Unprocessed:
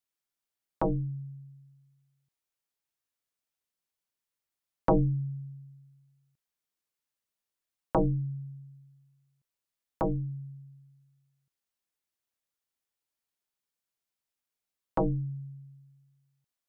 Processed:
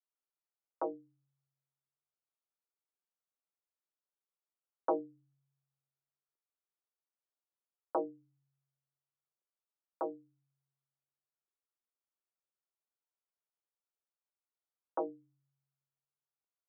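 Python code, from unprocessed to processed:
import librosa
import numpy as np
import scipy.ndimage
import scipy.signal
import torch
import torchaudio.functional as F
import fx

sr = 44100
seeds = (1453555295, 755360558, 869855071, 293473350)

y = scipy.signal.sosfilt(scipy.signal.cheby1(3, 1.0, [350.0, 1400.0], 'bandpass', fs=sr, output='sos'), x)
y = F.gain(torch.from_numpy(y), -5.5).numpy()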